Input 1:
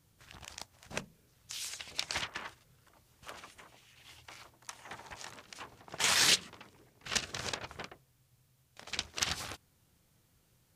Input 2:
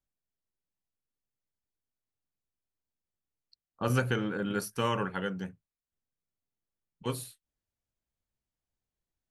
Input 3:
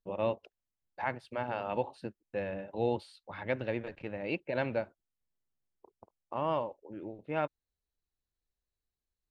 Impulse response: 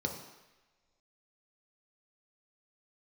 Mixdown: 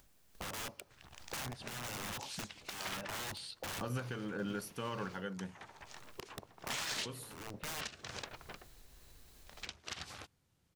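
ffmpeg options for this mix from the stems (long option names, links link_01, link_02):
-filter_complex "[0:a]highshelf=frequency=10000:gain=-9.5,adelay=700,volume=-11dB[link_01];[1:a]volume=-7.5dB,asplit=2[link_02][link_03];[2:a]acrossover=split=250|1200[link_04][link_05][link_06];[link_04]acompressor=threshold=-50dB:ratio=4[link_07];[link_05]acompressor=threshold=-49dB:ratio=4[link_08];[link_06]acompressor=threshold=-48dB:ratio=4[link_09];[link_07][link_08][link_09]amix=inputs=3:normalize=0,aeval=exprs='(mod(158*val(0)+1,2)-1)/158':channel_layout=same,adelay=350,volume=2dB,asplit=2[link_10][link_11];[link_11]volume=-19dB[link_12];[link_03]apad=whole_len=425725[link_13];[link_10][link_13]sidechaincompress=threshold=-53dB:ratio=8:attack=16:release=366[link_14];[link_02][link_14]amix=inputs=2:normalize=0,acompressor=mode=upward:threshold=-43dB:ratio=2.5,alimiter=level_in=9.5dB:limit=-24dB:level=0:latency=1:release=422,volume=-9.5dB,volume=0dB[link_15];[3:a]atrim=start_sample=2205[link_16];[link_12][link_16]afir=irnorm=-1:irlink=0[link_17];[link_01][link_15][link_17]amix=inputs=3:normalize=0,dynaudnorm=framelen=260:gausssize=3:maxgain=5dB,alimiter=level_in=4dB:limit=-24dB:level=0:latency=1:release=192,volume=-4dB"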